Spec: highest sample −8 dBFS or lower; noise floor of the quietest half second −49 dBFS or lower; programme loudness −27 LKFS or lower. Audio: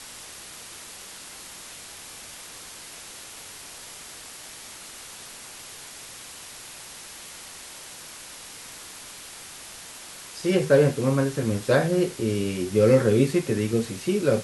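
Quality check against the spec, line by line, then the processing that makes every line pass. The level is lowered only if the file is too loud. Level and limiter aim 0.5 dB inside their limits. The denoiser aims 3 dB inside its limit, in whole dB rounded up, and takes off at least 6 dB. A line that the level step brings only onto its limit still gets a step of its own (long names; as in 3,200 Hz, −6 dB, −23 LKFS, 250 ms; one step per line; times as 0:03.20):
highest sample −6.5 dBFS: out of spec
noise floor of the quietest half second −42 dBFS: out of spec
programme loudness −22.5 LKFS: out of spec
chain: broadband denoise 6 dB, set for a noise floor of −42 dBFS
level −5 dB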